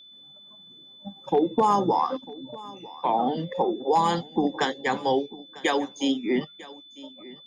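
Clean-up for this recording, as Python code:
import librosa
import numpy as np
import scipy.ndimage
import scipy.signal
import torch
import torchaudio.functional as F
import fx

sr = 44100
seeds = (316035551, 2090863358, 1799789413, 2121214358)

y = fx.notch(x, sr, hz=3500.0, q=30.0)
y = fx.fix_echo_inverse(y, sr, delay_ms=948, level_db=-20.0)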